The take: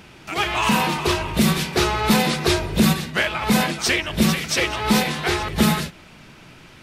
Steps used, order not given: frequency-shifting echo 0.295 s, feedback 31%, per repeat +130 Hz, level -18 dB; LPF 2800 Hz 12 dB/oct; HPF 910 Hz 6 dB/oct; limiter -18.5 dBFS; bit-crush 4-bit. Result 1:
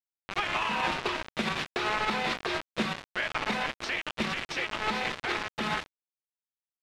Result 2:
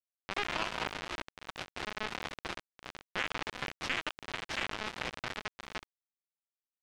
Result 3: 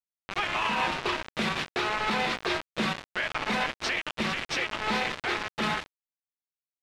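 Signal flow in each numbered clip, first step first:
frequency-shifting echo > HPF > bit-crush > limiter > LPF; limiter > HPF > frequency-shifting echo > bit-crush > LPF; HPF > frequency-shifting echo > bit-crush > LPF > limiter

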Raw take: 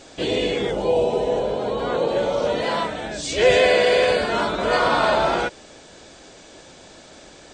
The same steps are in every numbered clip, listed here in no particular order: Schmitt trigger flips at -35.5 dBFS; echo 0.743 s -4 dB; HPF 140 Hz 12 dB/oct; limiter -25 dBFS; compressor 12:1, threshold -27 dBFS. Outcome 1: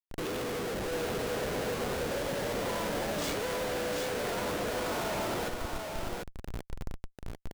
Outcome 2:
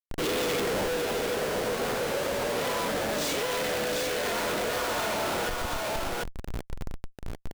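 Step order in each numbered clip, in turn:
HPF > limiter > compressor > Schmitt trigger > echo; HPF > Schmitt trigger > limiter > echo > compressor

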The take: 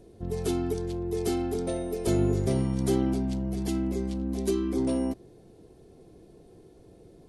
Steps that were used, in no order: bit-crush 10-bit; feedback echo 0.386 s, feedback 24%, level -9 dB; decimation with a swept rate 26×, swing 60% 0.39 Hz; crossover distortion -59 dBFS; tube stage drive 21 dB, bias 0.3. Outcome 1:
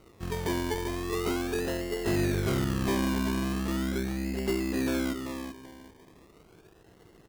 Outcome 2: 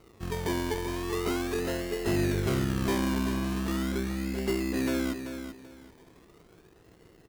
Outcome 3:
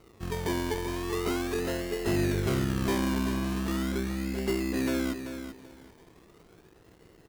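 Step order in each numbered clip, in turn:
crossover distortion > bit-crush > feedback echo > tube stage > decimation with a swept rate; decimation with a swept rate > tube stage > bit-crush > crossover distortion > feedback echo; decimation with a swept rate > tube stage > bit-crush > feedback echo > crossover distortion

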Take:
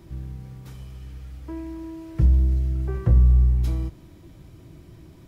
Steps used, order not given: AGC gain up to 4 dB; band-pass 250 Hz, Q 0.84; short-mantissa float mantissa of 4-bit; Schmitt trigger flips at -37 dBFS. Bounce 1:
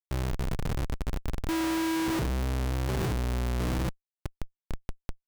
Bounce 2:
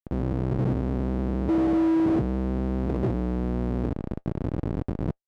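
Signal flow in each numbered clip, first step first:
AGC > short-mantissa float > band-pass > Schmitt trigger; AGC > Schmitt trigger > short-mantissa float > band-pass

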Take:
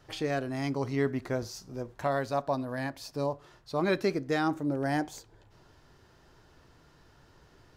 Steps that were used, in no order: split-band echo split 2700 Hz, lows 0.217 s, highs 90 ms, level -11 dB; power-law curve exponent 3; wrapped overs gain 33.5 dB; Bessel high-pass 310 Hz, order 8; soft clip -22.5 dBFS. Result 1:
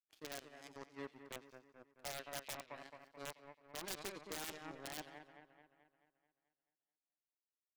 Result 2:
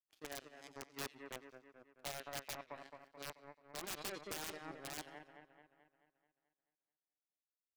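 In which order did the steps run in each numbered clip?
soft clip > Bessel high-pass > power-law curve > split-band echo > wrapped overs; Bessel high-pass > power-law curve > soft clip > split-band echo > wrapped overs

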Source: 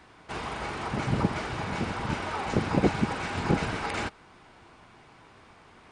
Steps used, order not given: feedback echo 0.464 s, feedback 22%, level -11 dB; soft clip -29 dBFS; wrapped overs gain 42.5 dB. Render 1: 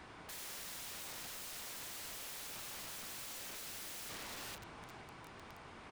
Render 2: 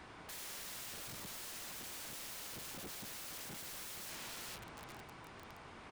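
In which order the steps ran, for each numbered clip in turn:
soft clip > feedback echo > wrapped overs; feedback echo > soft clip > wrapped overs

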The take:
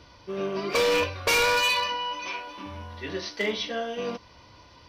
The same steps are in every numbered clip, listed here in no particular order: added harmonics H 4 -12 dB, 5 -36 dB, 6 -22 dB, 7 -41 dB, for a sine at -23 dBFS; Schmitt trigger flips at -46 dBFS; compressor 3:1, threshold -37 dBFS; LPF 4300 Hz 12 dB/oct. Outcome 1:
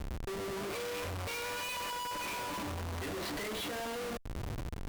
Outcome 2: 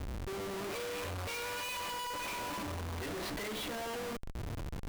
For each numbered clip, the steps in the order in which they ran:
LPF > compressor > Schmitt trigger > added harmonics; added harmonics > compressor > LPF > Schmitt trigger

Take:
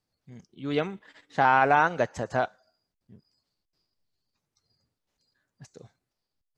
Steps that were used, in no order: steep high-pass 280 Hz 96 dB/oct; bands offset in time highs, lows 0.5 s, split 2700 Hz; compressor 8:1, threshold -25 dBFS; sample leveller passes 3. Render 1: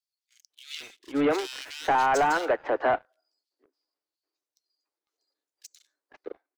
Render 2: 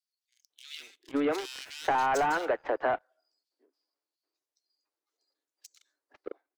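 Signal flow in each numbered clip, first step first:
steep high-pass > compressor > sample leveller > bands offset in time; steep high-pass > sample leveller > compressor > bands offset in time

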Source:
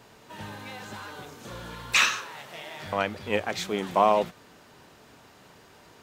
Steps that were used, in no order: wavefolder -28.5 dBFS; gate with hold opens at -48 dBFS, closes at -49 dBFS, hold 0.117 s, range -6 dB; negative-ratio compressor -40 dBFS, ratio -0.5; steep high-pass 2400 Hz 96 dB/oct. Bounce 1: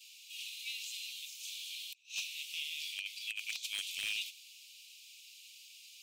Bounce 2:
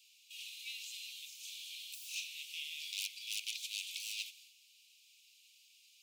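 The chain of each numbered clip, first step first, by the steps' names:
gate with hold > steep high-pass > negative-ratio compressor > wavefolder; wavefolder > steep high-pass > gate with hold > negative-ratio compressor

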